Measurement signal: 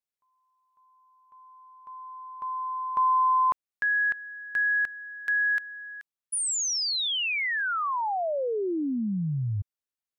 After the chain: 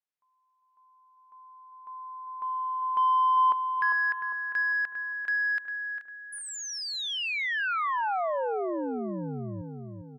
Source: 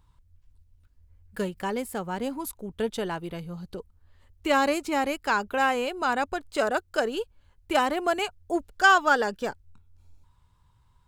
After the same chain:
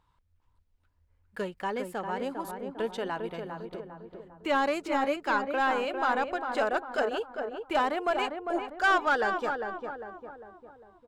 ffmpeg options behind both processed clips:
ffmpeg -i in.wav -filter_complex "[0:a]asplit=2[link_01][link_02];[link_02]highpass=frequency=720:poles=1,volume=15dB,asoftclip=type=tanh:threshold=-7dB[link_03];[link_01][link_03]amix=inputs=2:normalize=0,lowpass=frequency=1800:poles=1,volume=-6dB,asplit=2[link_04][link_05];[link_05]adelay=401,lowpass=frequency=1400:poles=1,volume=-5dB,asplit=2[link_06][link_07];[link_07]adelay=401,lowpass=frequency=1400:poles=1,volume=0.51,asplit=2[link_08][link_09];[link_09]adelay=401,lowpass=frequency=1400:poles=1,volume=0.51,asplit=2[link_10][link_11];[link_11]adelay=401,lowpass=frequency=1400:poles=1,volume=0.51,asplit=2[link_12][link_13];[link_13]adelay=401,lowpass=frequency=1400:poles=1,volume=0.51,asplit=2[link_14][link_15];[link_15]adelay=401,lowpass=frequency=1400:poles=1,volume=0.51[link_16];[link_04][link_06][link_08][link_10][link_12][link_14][link_16]amix=inputs=7:normalize=0,volume=-7.5dB" out.wav

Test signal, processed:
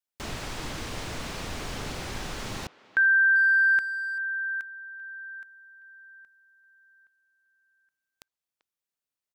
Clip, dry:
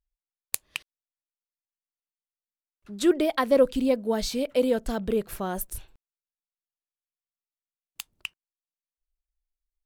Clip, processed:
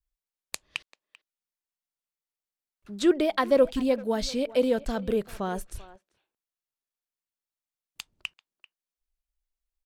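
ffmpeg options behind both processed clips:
ffmpeg -i in.wav -filter_complex "[0:a]adynamicequalizer=threshold=0.02:dfrequency=330:dqfactor=1.3:tfrequency=330:tqfactor=1.3:attack=5:release=100:ratio=0.375:range=1.5:mode=cutabove:tftype=bell,acrossover=split=7900[link_01][link_02];[link_02]acompressor=threshold=-57dB:ratio=6[link_03];[link_01][link_03]amix=inputs=2:normalize=0,asplit=2[link_04][link_05];[link_05]adelay=390,highpass=300,lowpass=3400,asoftclip=type=hard:threshold=-19.5dB,volume=-18dB[link_06];[link_04][link_06]amix=inputs=2:normalize=0" out.wav

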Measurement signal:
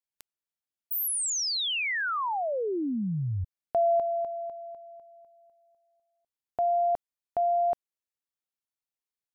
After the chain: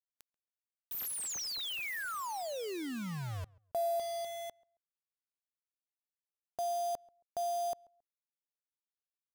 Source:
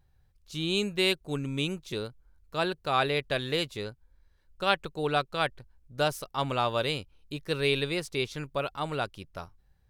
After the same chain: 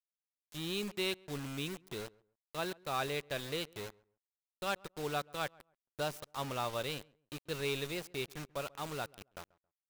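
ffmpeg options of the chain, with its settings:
ffmpeg -i in.wav -filter_complex "[0:a]volume=18.5dB,asoftclip=hard,volume=-18.5dB,acrusher=bits=5:mix=0:aa=0.000001,asplit=2[link_01][link_02];[link_02]adelay=136,lowpass=frequency=1400:poles=1,volume=-23.5dB,asplit=2[link_03][link_04];[link_04]adelay=136,lowpass=frequency=1400:poles=1,volume=0.24[link_05];[link_01][link_03][link_05]amix=inputs=3:normalize=0,volume=-9dB" out.wav

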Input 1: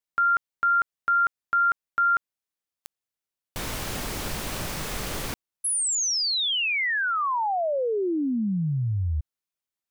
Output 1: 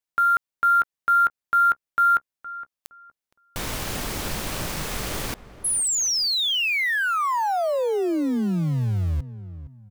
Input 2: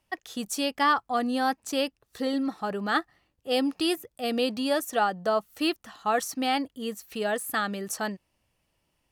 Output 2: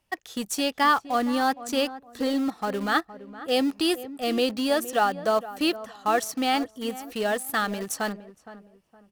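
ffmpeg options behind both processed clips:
ffmpeg -i in.wav -filter_complex "[0:a]asplit=2[link_01][link_02];[link_02]acrusher=bits=4:mix=0:aa=0.000001,volume=-11dB[link_03];[link_01][link_03]amix=inputs=2:normalize=0,asplit=2[link_04][link_05];[link_05]adelay=465,lowpass=frequency=1200:poles=1,volume=-14dB,asplit=2[link_06][link_07];[link_07]adelay=465,lowpass=frequency=1200:poles=1,volume=0.33,asplit=2[link_08][link_09];[link_09]adelay=465,lowpass=frequency=1200:poles=1,volume=0.33[link_10];[link_04][link_06][link_08][link_10]amix=inputs=4:normalize=0" out.wav

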